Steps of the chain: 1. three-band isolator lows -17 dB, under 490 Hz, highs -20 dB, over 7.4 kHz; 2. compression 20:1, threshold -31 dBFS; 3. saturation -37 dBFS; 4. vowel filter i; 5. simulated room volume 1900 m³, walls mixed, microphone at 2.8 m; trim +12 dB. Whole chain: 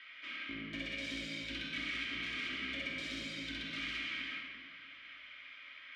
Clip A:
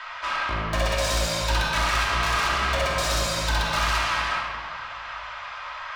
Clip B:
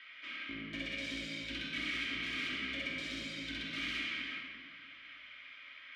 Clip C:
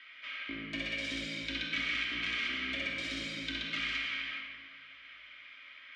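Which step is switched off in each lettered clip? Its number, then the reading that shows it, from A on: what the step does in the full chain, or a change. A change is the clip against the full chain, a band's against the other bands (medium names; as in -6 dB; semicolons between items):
4, 250 Hz band -16.5 dB; 2, mean gain reduction 1.5 dB; 3, distortion -9 dB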